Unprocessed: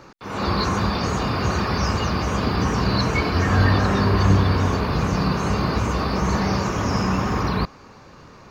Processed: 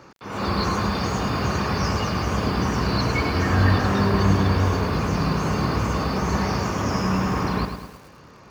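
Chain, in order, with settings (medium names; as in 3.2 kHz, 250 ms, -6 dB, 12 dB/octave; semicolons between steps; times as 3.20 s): high-pass 52 Hz 12 dB/octave; band-stop 3.9 kHz, Q 15; bit-crushed delay 106 ms, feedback 55%, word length 7-bit, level -7.5 dB; trim -2 dB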